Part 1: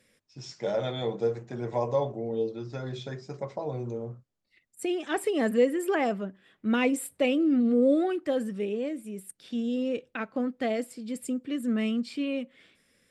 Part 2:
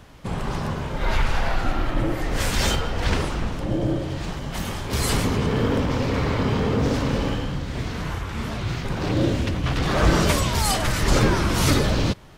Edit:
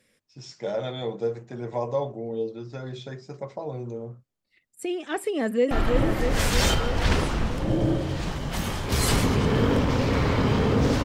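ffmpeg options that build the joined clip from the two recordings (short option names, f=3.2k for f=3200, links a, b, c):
-filter_complex "[0:a]apad=whole_dur=11.04,atrim=end=11.04,atrim=end=5.712[a];[1:a]atrim=start=1.718:end=7.05[b];[a][b]acrossfade=d=0.004:c1=hsin:c2=hsin,asplit=2[c][d];[d]afade=t=in:st=5.36:d=0.01,afade=t=out:st=5.71:d=0.01,aecho=0:1:320|640|960|1280|1600|1920|2240|2560|2880|3200|3520|3840:0.595662|0.416964|0.291874|0.204312|0.143018|0.100113|0.0700791|0.0490553|0.0343387|0.0240371|0.016826|0.0117782[e];[c][e]amix=inputs=2:normalize=0"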